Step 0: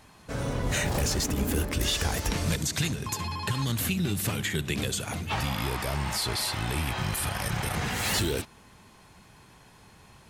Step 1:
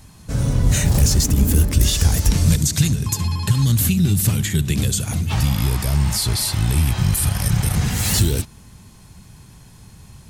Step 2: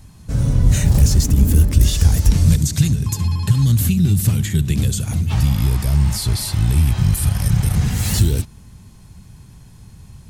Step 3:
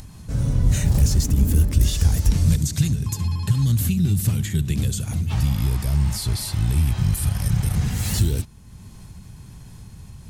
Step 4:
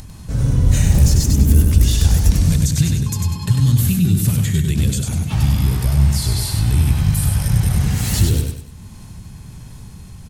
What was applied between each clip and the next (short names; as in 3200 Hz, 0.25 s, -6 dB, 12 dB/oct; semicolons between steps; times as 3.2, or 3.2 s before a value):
tone controls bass +15 dB, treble +11 dB
low shelf 230 Hz +7.5 dB; gain -3.5 dB
upward compressor, threshold -28 dBFS; gain -4.5 dB
feedback echo 98 ms, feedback 37%, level -4 dB; gain +3.5 dB